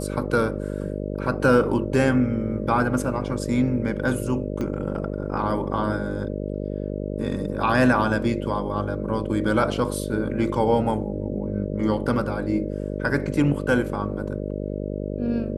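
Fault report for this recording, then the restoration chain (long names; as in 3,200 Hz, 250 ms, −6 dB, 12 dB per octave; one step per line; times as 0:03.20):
mains buzz 50 Hz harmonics 12 −29 dBFS
0:04.61: click −18 dBFS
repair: click removal
hum removal 50 Hz, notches 12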